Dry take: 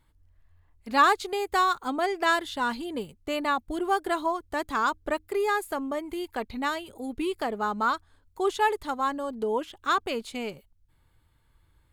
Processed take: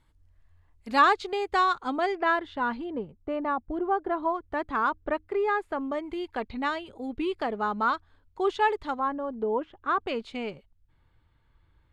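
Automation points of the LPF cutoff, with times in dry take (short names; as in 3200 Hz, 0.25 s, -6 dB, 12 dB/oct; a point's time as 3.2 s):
9600 Hz
from 0.99 s 4500 Hz
from 2.15 s 2000 Hz
from 2.9 s 1200 Hz
from 4.23 s 2200 Hz
from 5.81 s 3800 Hz
from 8.99 s 1500 Hz
from 10 s 3500 Hz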